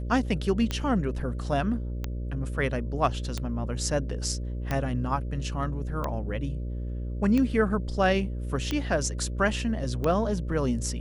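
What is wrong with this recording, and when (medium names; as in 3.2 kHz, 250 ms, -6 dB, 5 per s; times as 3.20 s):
buzz 60 Hz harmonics 10 -32 dBFS
tick 45 rpm -15 dBFS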